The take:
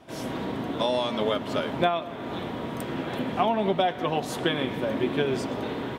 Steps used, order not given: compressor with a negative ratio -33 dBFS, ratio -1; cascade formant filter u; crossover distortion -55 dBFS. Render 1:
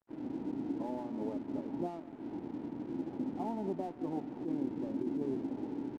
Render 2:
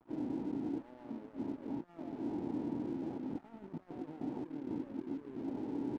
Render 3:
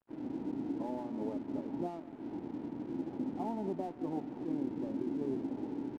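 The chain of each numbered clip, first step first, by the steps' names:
cascade formant filter > crossover distortion > compressor with a negative ratio; compressor with a negative ratio > cascade formant filter > crossover distortion; cascade formant filter > compressor with a negative ratio > crossover distortion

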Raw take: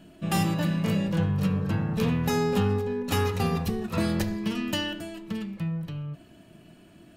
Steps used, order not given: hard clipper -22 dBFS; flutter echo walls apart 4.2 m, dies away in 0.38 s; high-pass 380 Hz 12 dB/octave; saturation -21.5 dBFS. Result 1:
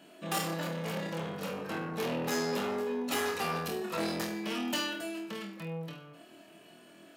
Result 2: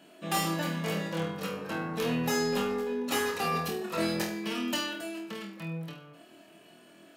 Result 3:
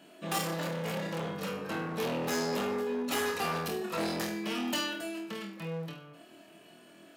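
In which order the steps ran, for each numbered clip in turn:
hard clipper > flutter echo > saturation > high-pass; high-pass > saturation > hard clipper > flutter echo; flutter echo > hard clipper > high-pass > saturation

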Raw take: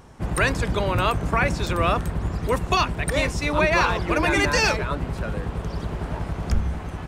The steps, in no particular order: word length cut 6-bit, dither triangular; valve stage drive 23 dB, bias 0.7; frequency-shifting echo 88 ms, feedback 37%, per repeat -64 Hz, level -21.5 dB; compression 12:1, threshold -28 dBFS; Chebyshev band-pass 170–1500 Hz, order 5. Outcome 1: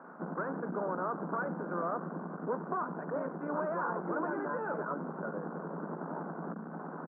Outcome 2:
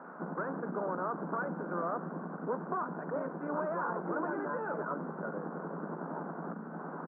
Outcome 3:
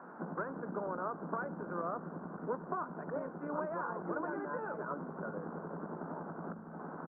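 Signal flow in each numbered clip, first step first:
frequency-shifting echo > word length cut > valve stage > compression > Chebyshev band-pass; valve stage > frequency-shifting echo > word length cut > compression > Chebyshev band-pass; word length cut > compression > valve stage > Chebyshev band-pass > frequency-shifting echo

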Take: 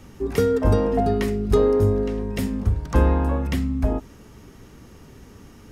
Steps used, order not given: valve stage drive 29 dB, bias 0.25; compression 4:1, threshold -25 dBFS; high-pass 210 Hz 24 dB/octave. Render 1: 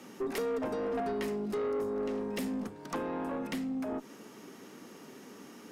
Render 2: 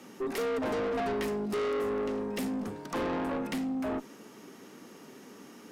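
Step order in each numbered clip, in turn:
compression > high-pass > valve stage; high-pass > valve stage > compression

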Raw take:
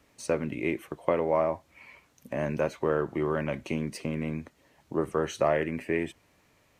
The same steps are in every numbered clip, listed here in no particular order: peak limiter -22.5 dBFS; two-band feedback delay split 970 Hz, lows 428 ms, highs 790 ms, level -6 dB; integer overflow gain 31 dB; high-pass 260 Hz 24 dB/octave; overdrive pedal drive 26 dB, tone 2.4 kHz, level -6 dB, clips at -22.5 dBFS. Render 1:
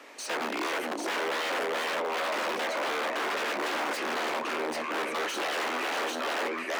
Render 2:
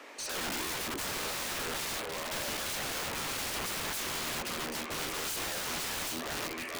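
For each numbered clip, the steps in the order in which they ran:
two-band feedback delay > peak limiter > integer overflow > overdrive pedal > high-pass; peak limiter > high-pass > overdrive pedal > two-band feedback delay > integer overflow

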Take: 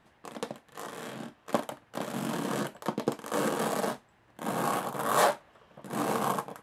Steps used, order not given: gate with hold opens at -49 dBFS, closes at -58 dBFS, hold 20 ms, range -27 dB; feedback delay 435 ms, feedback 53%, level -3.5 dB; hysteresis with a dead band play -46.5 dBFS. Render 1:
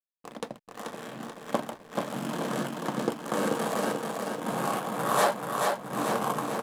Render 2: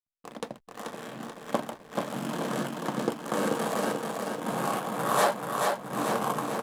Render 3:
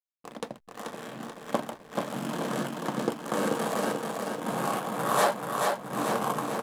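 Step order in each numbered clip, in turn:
gate with hold > feedback delay > hysteresis with a dead band; feedback delay > hysteresis with a dead band > gate with hold; feedback delay > gate with hold > hysteresis with a dead band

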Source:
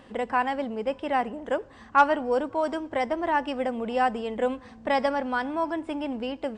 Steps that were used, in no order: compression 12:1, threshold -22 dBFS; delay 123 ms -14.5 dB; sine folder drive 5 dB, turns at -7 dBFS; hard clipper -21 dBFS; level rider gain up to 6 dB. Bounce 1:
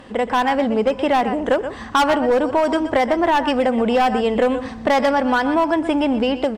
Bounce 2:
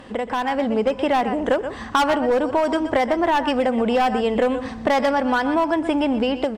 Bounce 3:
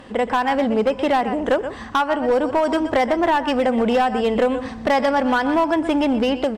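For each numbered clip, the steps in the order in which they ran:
delay > hard clipper > level rider > compression > sine folder; delay > hard clipper > sine folder > compression > level rider; delay > level rider > compression > hard clipper > sine folder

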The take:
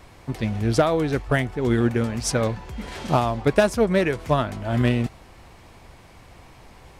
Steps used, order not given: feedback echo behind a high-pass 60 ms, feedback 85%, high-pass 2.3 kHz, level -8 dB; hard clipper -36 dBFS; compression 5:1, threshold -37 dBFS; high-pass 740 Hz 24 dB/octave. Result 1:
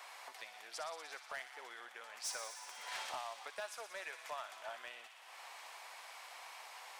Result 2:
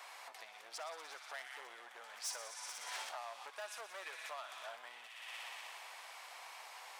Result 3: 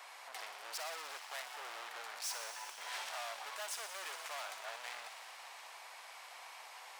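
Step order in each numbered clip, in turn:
compression > high-pass > hard clipper > feedback echo behind a high-pass; feedback echo behind a high-pass > compression > hard clipper > high-pass; hard clipper > feedback echo behind a high-pass > compression > high-pass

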